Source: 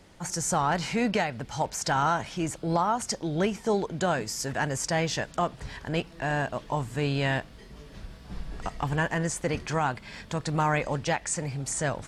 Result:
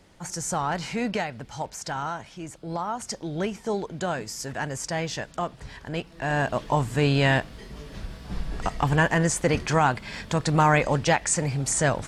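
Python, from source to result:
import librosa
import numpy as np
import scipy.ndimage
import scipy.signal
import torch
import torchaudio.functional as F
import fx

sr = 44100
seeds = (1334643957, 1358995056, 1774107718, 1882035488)

y = fx.gain(x, sr, db=fx.line((1.22, -1.5), (2.42, -8.0), (3.16, -2.0), (6.06, -2.0), (6.53, 6.0)))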